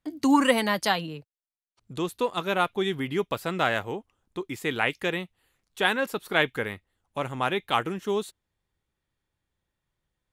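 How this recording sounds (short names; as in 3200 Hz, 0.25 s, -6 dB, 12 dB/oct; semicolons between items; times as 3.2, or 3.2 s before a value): noise floor -87 dBFS; spectral tilt -2.5 dB/oct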